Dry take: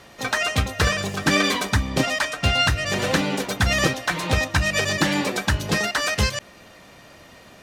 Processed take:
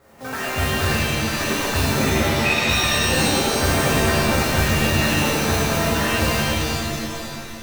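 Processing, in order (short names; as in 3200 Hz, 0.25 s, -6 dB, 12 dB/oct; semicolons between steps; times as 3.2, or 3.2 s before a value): median filter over 15 samples; 0.84–1.41 HPF 1200 Hz 12 dB/oct; modulation noise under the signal 11 dB; 2.01–2.69 inverted band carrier 2600 Hz; shimmer reverb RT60 2.6 s, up +7 st, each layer -2 dB, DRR -8.5 dB; gain -8 dB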